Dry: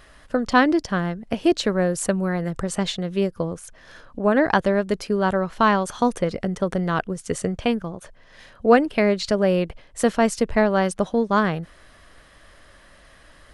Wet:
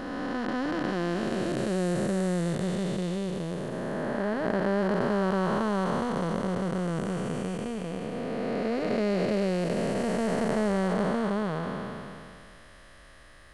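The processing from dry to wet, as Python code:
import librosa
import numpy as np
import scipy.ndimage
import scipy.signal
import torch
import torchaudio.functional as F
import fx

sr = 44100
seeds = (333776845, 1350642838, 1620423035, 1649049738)

y = fx.spec_blur(x, sr, span_ms=1010.0)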